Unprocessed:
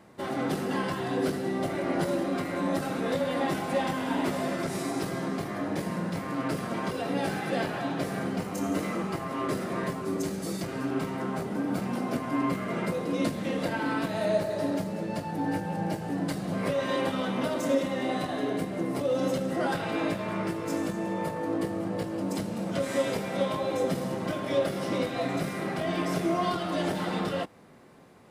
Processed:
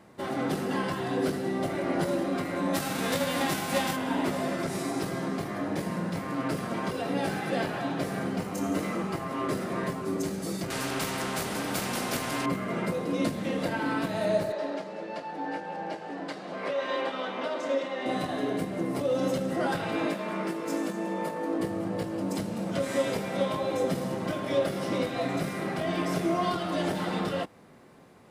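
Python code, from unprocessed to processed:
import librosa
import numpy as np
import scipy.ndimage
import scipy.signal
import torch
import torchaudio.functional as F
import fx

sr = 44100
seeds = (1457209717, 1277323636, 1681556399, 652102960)

y = fx.envelope_flatten(x, sr, power=0.6, at=(2.73, 3.95), fade=0.02)
y = fx.spectral_comp(y, sr, ratio=2.0, at=(10.7, 12.46))
y = fx.bandpass_edges(y, sr, low_hz=420.0, high_hz=4500.0, at=(14.52, 18.06))
y = fx.highpass(y, sr, hz=190.0, slope=24, at=(20.06, 21.6))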